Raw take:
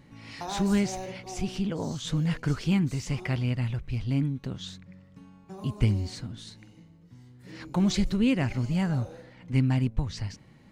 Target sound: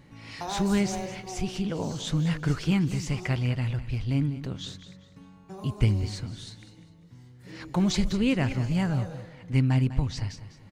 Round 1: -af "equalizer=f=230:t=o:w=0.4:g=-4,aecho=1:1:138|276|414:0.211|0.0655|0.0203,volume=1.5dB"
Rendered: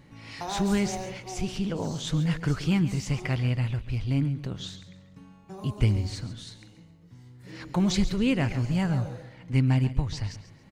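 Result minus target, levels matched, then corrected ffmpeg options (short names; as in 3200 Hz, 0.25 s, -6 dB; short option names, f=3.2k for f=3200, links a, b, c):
echo 62 ms early
-af "equalizer=f=230:t=o:w=0.4:g=-4,aecho=1:1:200|400|600:0.211|0.0655|0.0203,volume=1.5dB"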